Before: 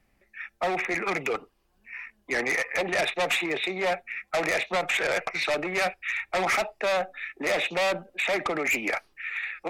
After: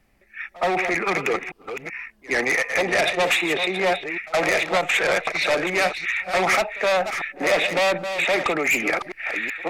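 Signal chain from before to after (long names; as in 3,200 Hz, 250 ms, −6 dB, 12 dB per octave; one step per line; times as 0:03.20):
delay that plays each chunk backwards 380 ms, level −8.5 dB
echo ahead of the sound 69 ms −21.5 dB
level +5 dB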